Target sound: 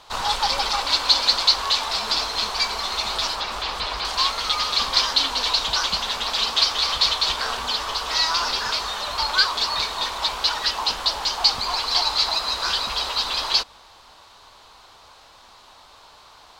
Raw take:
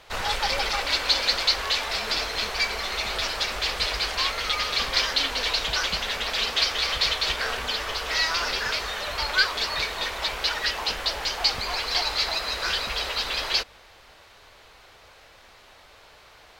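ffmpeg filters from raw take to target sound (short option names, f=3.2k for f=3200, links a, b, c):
-filter_complex "[0:a]equalizer=f=250:t=o:w=1:g=4,equalizer=f=500:t=o:w=1:g=-3,equalizer=f=1k:t=o:w=1:g=11,equalizer=f=2k:t=o:w=1:g=-6,equalizer=f=4k:t=o:w=1:g=7,equalizer=f=8k:t=o:w=1:g=5,asettb=1/sr,asplit=3[a][b][c];[a]atrim=end=3.354[d];[b]atrim=start=3.35:end=4.05,asetpts=PTS-STARTPTS,afade=t=in:d=0.004:c=qsin,afade=t=out:st=0.696:d=0.004:c=qsin,acrossover=split=3300[e][f];[f]acompressor=threshold=-33dB:ratio=4:attack=1:release=60[g];[e][g]amix=inputs=2:normalize=0[h];[c]atrim=start=4.046[i];[d][h]acrossfade=d=0.004:c1=hsin:c2=qsin[j];[j][i]acrossfade=d=0.004:c1=qsin:c2=hsin,volume=-2dB"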